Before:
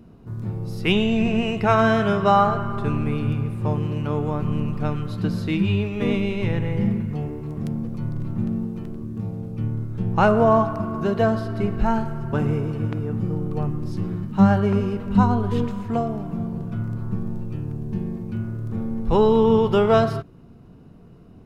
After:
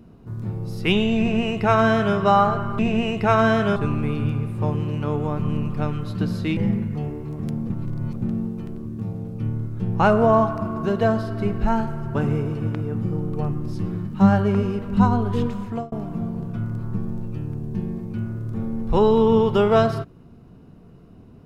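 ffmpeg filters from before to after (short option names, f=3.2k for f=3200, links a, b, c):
-filter_complex "[0:a]asplit=7[a][b][c][d][e][f][g];[a]atrim=end=2.792[h];[b]atrim=start=1.188:end=2.162[i];[c]atrim=start=2.788:end=5.602[j];[d]atrim=start=6.748:end=7.882[k];[e]atrim=start=7.878:end=8.402,asetpts=PTS-STARTPTS,areverse[l];[f]atrim=start=8.398:end=16.1,asetpts=PTS-STARTPTS,afade=t=out:st=7.352:d=0.35:c=qsin[m];[g]atrim=start=16.1,asetpts=PTS-STARTPTS,afade=t=in:d=0.004:c=hsin[n];[h][i]acrossfade=d=0.004:c1=hsin:c2=hsin[o];[o][j]acrossfade=d=0.004:c1=hsin:c2=hsin[p];[p][k]acrossfade=d=0.004:c1=hsin:c2=hsin[q];[q][l]acrossfade=d=0.004:c1=hsin:c2=hsin[r];[m][n]concat=n=2:v=0:a=1[s];[r][s]acrossfade=d=0.004:c1=hsin:c2=hsin"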